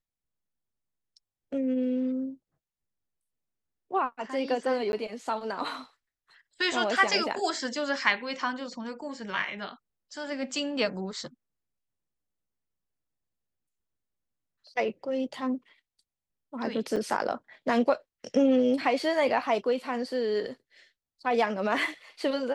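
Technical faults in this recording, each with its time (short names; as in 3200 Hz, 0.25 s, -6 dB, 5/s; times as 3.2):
4.92–4.93 gap 11 ms
16.96–16.97 gap 6 ms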